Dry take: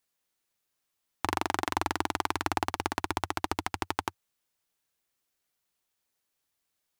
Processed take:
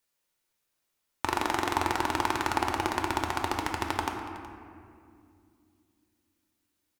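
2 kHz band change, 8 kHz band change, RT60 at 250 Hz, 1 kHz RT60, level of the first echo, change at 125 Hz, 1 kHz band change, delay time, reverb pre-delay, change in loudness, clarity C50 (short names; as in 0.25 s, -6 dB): +2.5 dB, +1.5 dB, 3.7 s, 2.1 s, -18.5 dB, +2.5 dB, +3.0 dB, 0.37 s, 3 ms, +2.5 dB, 4.5 dB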